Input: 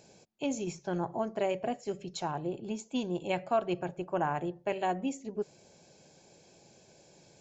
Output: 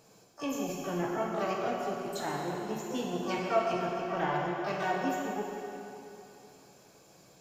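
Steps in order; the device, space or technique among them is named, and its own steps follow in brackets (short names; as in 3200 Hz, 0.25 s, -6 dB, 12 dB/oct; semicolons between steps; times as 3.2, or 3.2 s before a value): shimmer-style reverb (harmoniser +12 st -7 dB; reverb RT60 3.0 s, pre-delay 3 ms, DRR -2.5 dB); gain -4 dB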